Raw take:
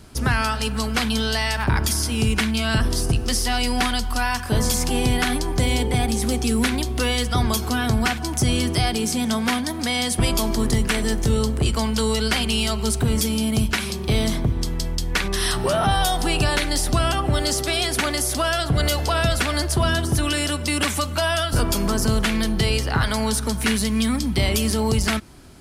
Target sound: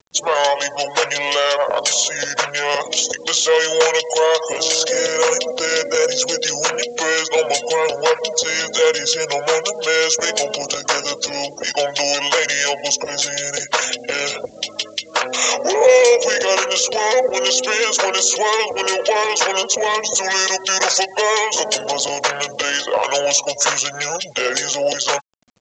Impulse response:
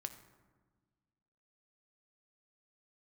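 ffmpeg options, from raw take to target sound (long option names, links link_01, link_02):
-filter_complex "[0:a]afftfilt=real='re*gte(hypot(re,im),0.02)':imag='im*gte(hypot(re,im),0.02)':win_size=1024:overlap=0.75,highshelf=frequency=2800:gain=3.5,aecho=1:1:5.4:0.32,acrossover=split=2700[link_01][link_02];[link_01]acompressor=mode=upward:threshold=-29dB:ratio=2.5[link_03];[link_02]alimiter=limit=-17dB:level=0:latency=1:release=186[link_04];[link_03][link_04]amix=inputs=2:normalize=0,aeval=exprs='0.473*(cos(1*acos(clip(val(0)/0.473,-1,1)))-cos(1*PI/2))+0.00376*(cos(3*acos(clip(val(0)/0.473,-1,1)))-cos(3*PI/2))+0.0668*(cos(5*acos(clip(val(0)/0.473,-1,1)))-cos(5*PI/2))':channel_layout=same,highpass=frequency=800:width_type=q:width=4.9,acrusher=bits=8:mix=0:aa=0.000001,asetrate=28595,aresample=44100,atempo=1.54221,crystalizer=i=4.5:c=0,aresample=16000,aresample=44100,volume=-3.5dB"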